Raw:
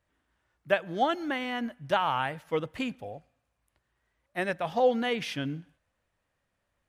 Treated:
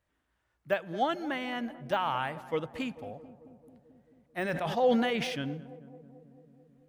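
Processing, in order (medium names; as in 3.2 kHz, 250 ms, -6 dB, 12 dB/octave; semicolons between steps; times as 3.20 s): de-esser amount 100%; on a send: filtered feedback delay 220 ms, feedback 75%, low-pass 1 kHz, level -14.5 dB; 4.39–5.42 s: on the sum: decay stretcher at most 35 dB/s; trim -2.5 dB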